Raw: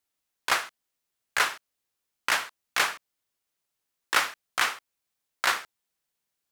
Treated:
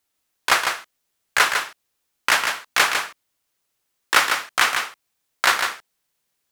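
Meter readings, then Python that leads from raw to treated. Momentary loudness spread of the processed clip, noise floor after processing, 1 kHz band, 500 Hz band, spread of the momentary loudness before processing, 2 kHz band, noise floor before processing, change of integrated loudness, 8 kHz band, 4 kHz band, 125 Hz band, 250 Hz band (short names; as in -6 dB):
13 LU, -75 dBFS, +8.0 dB, +8.0 dB, 13 LU, +8.0 dB, -83 dBFS, +7.5 dB, +8.0 dB, +8.0 dB, n/a, +8.0 dB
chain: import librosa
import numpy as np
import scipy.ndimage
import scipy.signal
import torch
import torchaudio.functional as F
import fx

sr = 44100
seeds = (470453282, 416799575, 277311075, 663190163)

y = x + 10.0 ** (-6.0 / 20.0) * np.pad(x, (int(152 * sr / 1000.0), 0))[:len(x)]
y = y * librosa.db_to_amplitude(7.0)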